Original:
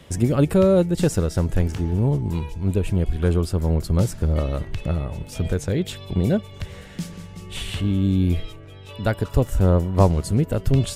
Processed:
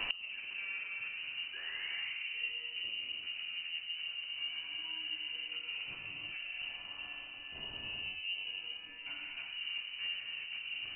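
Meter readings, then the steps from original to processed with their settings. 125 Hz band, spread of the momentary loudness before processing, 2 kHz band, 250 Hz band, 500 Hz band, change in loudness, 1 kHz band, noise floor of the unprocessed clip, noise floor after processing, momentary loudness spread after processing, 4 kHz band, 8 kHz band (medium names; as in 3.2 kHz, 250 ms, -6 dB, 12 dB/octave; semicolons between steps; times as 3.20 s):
under -40 dB, 16 LU, +0.5 dB, under -40 dB, -40.0 dB, -17.0 dB, -24.0 dB, -41 dBFS, -48 dBFS, 5 LU, +1.5 dB, under -40 dB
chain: reverse; compression 8:1, threshold -27 dBFS, peak gain reduction 17 dB; reverse; painted sound fall, 1.53–2.17 s, 400–1300 Hz -34 dBFS; Chebyshev shaper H 5 -8 dB, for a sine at -17 dBFS; in parallel at -10 dB: short-mantissa float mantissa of 2-bit; on the sum: frequency inversion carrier 2.9 kHz; gated-style reverb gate 420 ms flat, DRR -4 dB; inverted gate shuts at -22 dBFS, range -26 dB; trim +1 dB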